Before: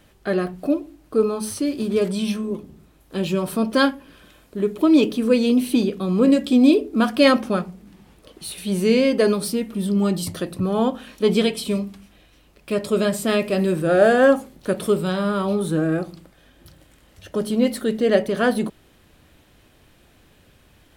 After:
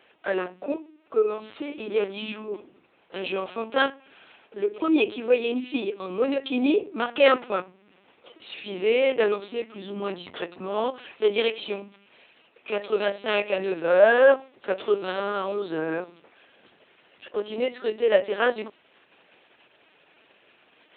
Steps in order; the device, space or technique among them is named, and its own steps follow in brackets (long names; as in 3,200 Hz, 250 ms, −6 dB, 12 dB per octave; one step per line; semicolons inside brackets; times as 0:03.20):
talking toy (linear-prediction vocoder at 8 kHz pitch kept; high-pass filter 430 Hz 12 dB per octave; parametric band 2,600 Hz +5.5 dB 0.49 octaves)
parametric band 5,100 Hz −4.5 dB 1.1 octaves